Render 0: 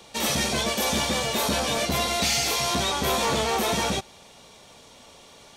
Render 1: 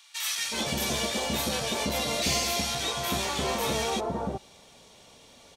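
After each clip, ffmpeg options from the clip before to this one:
ffmpeg -i in.wav -filter_complex "[0:a]acrossover=split=1200[link_01][link_02];[link_01]adelay=370[link_03];[link_03][link_02]amix=inputs=2:normalize=0,volume=-3.5dB" out.wav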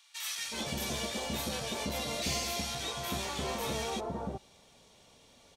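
ffmpeg -i in.wav -af "lowshelf=frequency=170:gain=3.5,volume=-7dB" out.wav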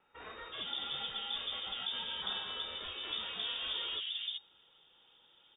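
ffmpeg -i in.wav -filter_complex "[0:a]acrossover=split=130|820|2400[link_01][link_02][link_03][link_04];[link_03]aeval=exprs='max(val(0),0)':channel_layout=same[link_05];[link_01][link_02][link_05][link_04]amix=inputs=4:normalize=0,lowpass=frequency=3100:width_type=q:width=0.5098,lowpass=frequency=3100:width_type=q:width=0.6013,lowpass=frequency=3100:width_type=q:width=0.9,lowpass=frequency=3100:width_type=q:width=2.563,afreqshift=-3700,volume=-2dB" out.wav

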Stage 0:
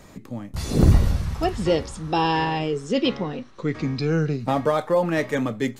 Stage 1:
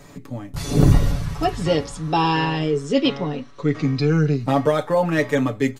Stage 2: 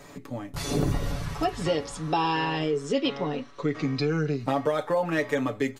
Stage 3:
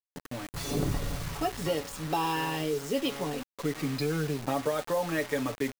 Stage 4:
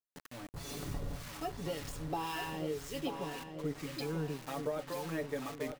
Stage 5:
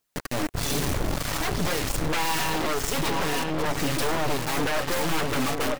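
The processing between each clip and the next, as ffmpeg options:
ffmpeg -i in.wav -af "aecho=1:1:7:0.67,volume=1dB" out.wav
ffmpeg -i in.wav -af "bass=frequency=250:gain=-7,treble=frequency=4000:gain=-2,acompressor=threshold=-24dB:ratio=2.5" out.wav
ffmpeg -i in.wav -af "acrusher=bits=5:mix=0:aa=0.000001,volume=-4dB" out.wav
ffmpeg -i in.wav -filter_complex "[0:a]areverse,acompressor=mode=upward:threshold=-33dB:ratio=2.5,areverse,acrossover=split=1000[link_01][link_02];[link_01]aeval=exprs='val(0)*(1-0.7/2+0.7/2*cos(2*PI*1.9*n/s))':channel_layout=same[link_03];[link_02]aeval=exprs='val(0)*(1-0.7/2-0.7/2*cos(2*PI*1.9*n/s))':channel_layout=same[link_04];[link_03][link_04]amix=inputs=2:normalize=0,asplit=2[link_05][link_06];[link_06]adelay=937,lowpass=frequency=4400:poles=1,volume=-7dB,asplit=2[link_07][link_08];[link_08]adelay=937,lowpass=frequency=4400:poles=1,volume=0.42,asplit=2[link_09][link_10];[link_10]adelay=937,lowpass=frequency=4400:poles=1,volume=0.42,asplit=2[link_11][link_12];[link_12]adelay=937,lowpass=frequency=4400:poles=1,volume=0.42,asplit=2[link_13][link_14];[link_14]adelay=937,lowpass=frequency=4400:poles=1,volume=0.42[link_15];[link_05][link_07][link_09][link_11][link_13][link_15]amix=inputs=6:normalize=0,volume=-5.5dB" out.wav
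ffmpeg -i in.wav -af "aeval=exprs='0.0631*sin(PI/2*5.01*val(0)/0.0631)':channel_layout=same,aphaser=in_gain=1:out_gain=1:delay=3.8:decay=0.24:speed=1.3:type=triangular,aeval=exprs='0.0841*(cos(1*acos(clip(val(0)/0.0841,-1,1)))-cos(1*PI/2))+0.0266*(cos(4*acos(clip(val(0)/0.0841,-1,1)))-cos(4*PI/2))':channel_layout=same" out.wav

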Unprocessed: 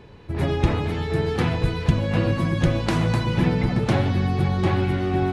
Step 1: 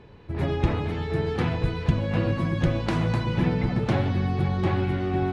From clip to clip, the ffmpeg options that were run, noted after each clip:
ffmpeg -i in.wav -af "highshelf=frequency=7000:gain=-11.5,volume=-3dB" out.wav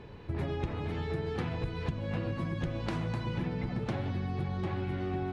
ffmpeg -i in.wav -af "acompressor=threshold=-32dB:ratio=6,volume=1dB" out.wav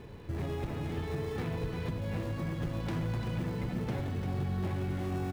ffmpeg -i in.wav -filter_complex "[0:a]asplit=2[link_01][link_02];[link_02]acrusher=samples=29:mix=1:aa=0.000001,volume=-9dB[link_03];[link_01][link_03]amix=inputs=2:normalize=0,asoftclip=type=tanh:threshold=-26.5dB,aecho=1:1:344:0.422,volume=-1.5dB" out.wav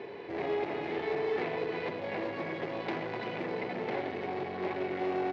ffmpeg -i in.wav -af "asoftclip=type=tanh:threshold=-33.5dB,highpass=380,equalizer=frequency=390:width_type=q:width=4:gain=8,equalizer=frequency=720:width_type=q:width=4:gain=5,equalizer=frequency=1300:width_type=q:width=4:gain=-4,equalizer=frequency=2100:width_type=q:width=4:gain=6,equalizer=frequency=3400:width_type=q:width=4:gain=-3,lowpass=frequency=4300:width=0.5412,lowpass=frequency=4300:width=1.3066,volume=7.5dB" out.wav

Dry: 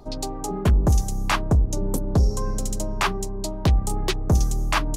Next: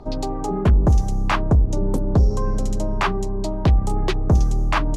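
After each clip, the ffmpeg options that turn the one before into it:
ffmpeg -i in.wav -filter_complex "[0:a]aemphasis=mode=reproduction:type=75fm,asplit=2[link_01][link_02];[link_02]alimiter=limit=-21.5dB:level=0:latency=1:release=63,volume=-2dB[link_03];[link_01][link_03]amix=inputs=2:normalize=0" out.wav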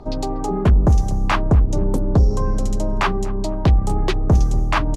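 ffmpeg -i in.wav -filter_complex "[0:a]asplit=2[link_01][link_02];[link_02]adelay=241,lowpass=frequency=1200:poles=1,volume=-17dB,asplit=2[link_03][link_04];[link_04]adelay=241,lowpass=frequency=1200:poles=1,volume=0.51,asplit=2[link_05][link_06];[link_06]adelay=241,lowpass=frequency=1200:poles=1,volume=0.51,asplit=2[link_07][link_08];[link_08]adelay=241,lowpass=frequency=1200:poles=1,volume=0.51[link_09];[link_01][link_03][link_05][link_07][link_09]amix=inputs=5:normalize=0,volume=1.5dB" out.wav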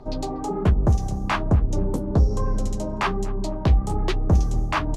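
ffmpeg -i in.wav -af "flanger=delay=7.4:depth=9.4:regen=-45:speed=1.2:shape=triangular" out.wav

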